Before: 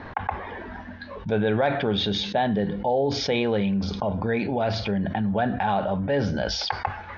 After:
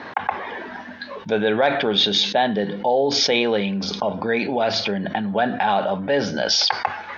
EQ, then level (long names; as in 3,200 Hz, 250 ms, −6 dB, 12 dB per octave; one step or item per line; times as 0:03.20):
high-pass filter 230 Hz 12 dB per octave
high-shelf EQ 3,000 Hz +9 dB
+4.0 dB